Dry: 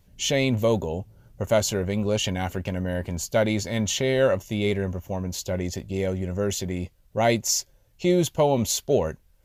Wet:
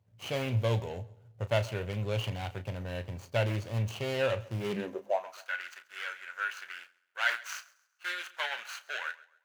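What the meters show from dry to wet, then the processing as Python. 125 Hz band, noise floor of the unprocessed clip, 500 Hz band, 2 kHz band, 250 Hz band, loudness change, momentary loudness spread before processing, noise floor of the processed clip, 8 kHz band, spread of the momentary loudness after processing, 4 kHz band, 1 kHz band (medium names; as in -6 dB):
-6.0 dB, -60 dBFS, -11.0 dB, -1.0 dB, -15.5 dB, -9.0 dB, 9 LU, -71 dBFS, -20.5 dB, 11 LU, -9.0 dB, -7.0 dB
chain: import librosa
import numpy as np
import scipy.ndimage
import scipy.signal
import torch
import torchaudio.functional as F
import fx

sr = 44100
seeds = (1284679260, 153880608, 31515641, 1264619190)

y = scipy.signal.medfilt(x, 25)
y = scipy.signal.sosfilt(scipy.signal.butter(2, 86.0, 'highpass', fs=sr, output='sos'), y)
y = fx.filter_sweep_highpass(y, sr, from_hz=110.0, to_hz=1500.0, start_s=4.58, end_s=5.4, q=7.1)
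y = fx.peak_eq(y, sr, hz=180.0, db=-14.5, octaves=2.5)
y = fx.doubler(y, sr, ms=34.0, db=-12.0)
y = fx.echo_feedback(y, sr, ms=134, feedback_pct=36, wet_db=-20.5)
y = fx.dynamic_eq(y, sr, hz=2700.0, q=1.5, threshold_db=-51.0, ratio=4.0, max_db=7)
y = y * 10.0 ** (-4.0 / 20.0)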